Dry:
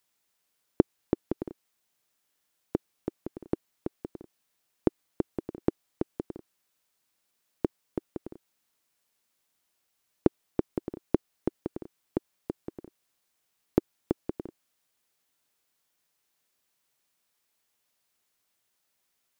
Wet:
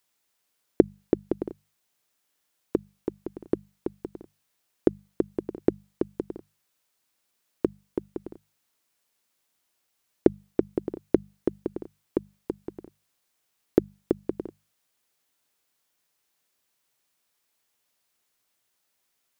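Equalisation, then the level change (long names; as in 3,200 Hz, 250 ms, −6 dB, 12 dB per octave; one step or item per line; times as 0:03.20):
mains-hum notches 50/100/150/200 Hz
dynamic equaliser 420 Hz, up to +5 dB, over −41 dBFS, Q 1.5
+1.5 dB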